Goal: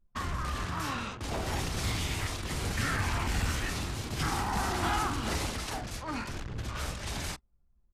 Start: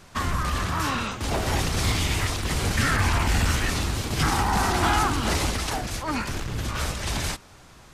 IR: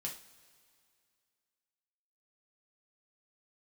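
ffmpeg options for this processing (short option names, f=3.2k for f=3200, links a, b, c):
-af "aecho=1:1:29|46:0.178|0.299,anlmdn=6.31,volume=-8.5dB"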